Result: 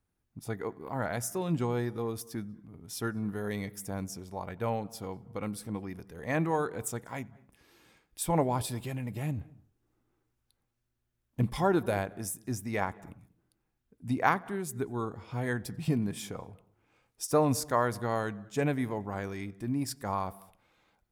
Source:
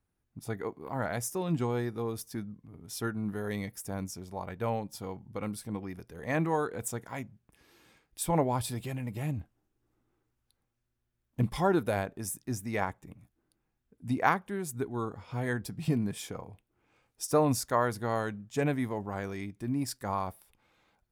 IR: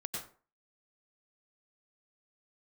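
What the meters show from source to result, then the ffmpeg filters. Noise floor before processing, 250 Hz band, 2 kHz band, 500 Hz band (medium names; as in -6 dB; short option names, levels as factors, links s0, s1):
-81 dBFS, 0.0 dB, 0.0 dB, 0.0 dB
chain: -filter_complex "[0:a]asplit=2[s0][s1];[s1]highshelf=f=3800:g=-9.5[s2];[1:a]atrim=start_sample=2205,adelay=91[s3];[s2][s3]afir=irnorm=-1:irlink=0,volume=0.0794[s4];[s0][s4]amix=inputs=2:normalize=0"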